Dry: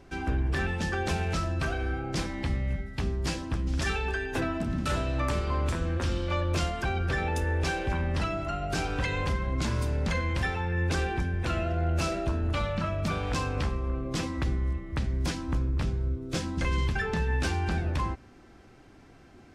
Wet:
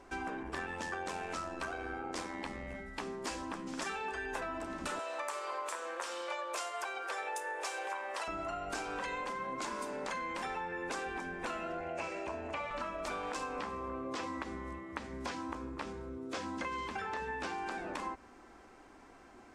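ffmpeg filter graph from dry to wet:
ffmpeg -i in.wav -filter_complex "[0:a]asettb=1/sr,asplit=3[link_01][link_02][link_03];[link_01]atrim=end=0.434[link_04];[link_02]atrim=start=0.43:end=2.75,asetpts=PTS-STARTPTS,afade=type=in:duration=0.004:curve=qsin,afade=type=out:start_time=2.316:duration=0.004:curve=qsin,highpass=86,tremolo=f=87:d=0.571[link_05];[link_03]atrim=start=2.746[link_06];[link_04][link_05]acrossfade=duration=0.004:curve1=hsin:curve2=qsin[link_07];[link_07][link_06]acrossfade=duration=0.004:curve1=qsin:curve2=hsin,asettb=1/sr,asplit=3[link_08][link_09][link_10];[link_08]atrim=end=4.994[link_11];[link_09]atrim=start=4.99:end=8.28,asetpts=PTS-STARTPTS,afade=type=in:duration=0.004:curve=qsin,afade=type=out:start_time=3.286:duration=0.004:curve=qsin,highpass=frequency=470:width=0.5412,highpass=frequency=470:width=1.3066,highshelf=frequency=8700:gain=10.5[link_12];[link_10]atrim=start=8.276[link_13];[link_11][link_12]acrossfade=duration=0.004:curve1=hsin:curve2=qsin[link_14];[link_14][link_13]acrossfade=duration=0.004:curve1=qsin:curve2=hsin,asettb=1/sr,asplit=3[link_15][link_16][link_17];[link_15]atrim=end=11.804[link_18];[link_16]atrim=start=11.8:end=12.71,asetpts=PTS-STARTPTS,afade=type=in:duration=0.004:curve=qsin,afade=type=out:start_time=0.906:duration=0.004:curve=qsin,acrossover=split=3100[link_19][link_20];[link_20]acompressor=threshold=-49dB:ratio=4:attack=1:release=60[link_21];[link_19][link_21]amix=inputs=2:normalize=0,highpass=140,equalizer=frequency=210:width_type=q:width=4:gain=-8,equalizer=frequency=320:width_type=q:width=4:gain=-6,equalizer=frequency=680:width_type=q:width=4:gain=4,equalizer=frequency=1300:width_type=q:width=4:gain=-9,equalizer=frequency=2400:width_type=q:width=4:gain=7,equalizer=frequency=3700:width_type=q:width=4:gain=-5,lowpass=frequency=8600:width=0.5412,lowpass=frequency=8600:width=1.3066[link_22];[link_17]atrim=start=12.706[link_23];[link_18][link_22]acrossfade=duration=0.004:curve1=hsin:curve2=qsin[link_24];[link_24][link_23]acrossfade=duration=0.004:curve1=qsin:curve2=hsin,asettb=1/sr,asplit=3[link_25][link_26][link_27];[link_25]atrim=end=13.594[link_28];[link_26]atrim=start=13.59:end=17.58,asetpts=PTS-STARTPTS,afade=type=in:duration=0.004:curve=qsin,afade=type=out:start_time=3.986:duration=0.004:curve=qsin,acrossover=split=5700[link_29][link_30];[link_30]acompressor=threshold=-59dB:ratio=4:attack=1:release=60[link_31];[link_29][link_31]amix=inputs=2:normalize=0,highpass=frequency=85:width=0.5412,highpass=frequency=85:width=1.3066[link_32];[link_27]atrim=start=17.576[link_33];[link_28][link_32]acrossfade=duration=0.004:curve1=hsin:curve2=qsin[link_34];[link_34][link_33]acrossfade=duration=0.004:curve1=qsin:curve2=hsin,afftfilt=real='re*lt(hypot(re,im),0.2)':imag='im*lt(hypot(re,im),0.2)':win_size=1024:overlap=0.75,equalizer=frequency=125:width_type=o:width=1:gain=-11,equalizer=frequency=250:width_type=o:width=1:gain=4,equalizer=frequency=500:width_type=o:width=1:gain=4,equalizer=frequency=1000:width_type=o:width=1:gain=11,equalizer=frequency=2000:width_type=o:width=1:gain=4,equalizer=frequency=8000:width_type=o:width=1:gain=9,acompressor=threshold=-28dB:ratio=6,volume=-7.5dB" out.wav

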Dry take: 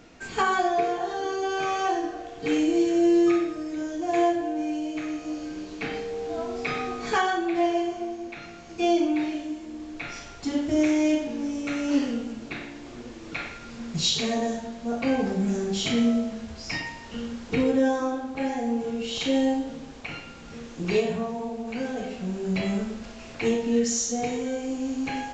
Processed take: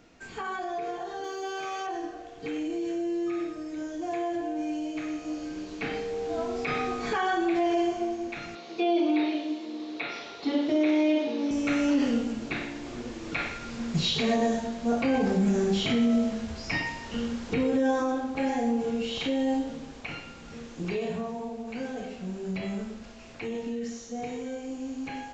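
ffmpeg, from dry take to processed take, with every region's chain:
ffmpeg -i in.wav -filter_complex "[0:a]asettb=1/sr,asplit=3[link_01][link_02][link_03];[link_01]atrim=end=1.244[link_04];[link_02]atrim=start=1.24:end=1.87,asetpts=PTS-STARTPTS,afade=type=in:duration=0.004:curve=qsin,afade=type=out:start_time=0.626:duration=0.004:curve=qsin,bass=frequency=250:gain=-8,treble=frequency=4000:gain=14,acrusher=bits=7:mix=0:aa=0.5[link_05];[link_03]atrim=start=1.866[link_06];[link_04][link_05]acrossfade=duration=0.004:curve1=hsin:curve2=qsin[link_07];[link_07][link_06]acrossfade=duration=0.004:curve1=qsin:curve2=hsin,asettb=1/sr,asplit=3[link_08][link_09][link_10];[link_08]atrim=end=8.554[link_11];[link_09]atrim=start=8.55:end=11.51,asetpts=PTS-STARTPTS,afade=type=in:duration=0.004:curve=qsin,afade=type=out:start_time=2.956:duration=0.004:curve=qsin,highpass=280,equalizer=frequency=440:width_type=q:width=4:gain=5,equalizer=frequency=1600:width_type=q:width=4:gain=-5,equalizer=frequency=3900:width_type=q:width=4:gain=10,lowpass=frequency=5800:width=0.5412,lowpass=frequency=5800:width=1.3066,acrossover=split=3600[link_12][link_13];[link_13]acompressor=threshold=-54dB:ratio=4:attack=1:release=60[link_14];[link_12][link_14]amix=inputs=2:normalize=0[link_15];[link_10]atrim=start=11.506[link_16];[link_11][link_15]acrossfade=duration=0.004:curve1=hsin:curve2=qsin[link_17];[link_17][link_16]acrossfade=duration=0.004:curve1=qsin:curve2=hsin,acrossover=split=3600[link_18][link_19];[link_19]acompressor=threshold=-46dB:ratio=4:attack=1:release=60[link_20];[link_18][link_20]amix=inputs=2:normalize=0,alimiter=limit=-20dB:level=0:latency=1:release=34,dynaudnorm=framelen=390:gausssize=31:maxgain=9dB,volume=-6dB" out.wav

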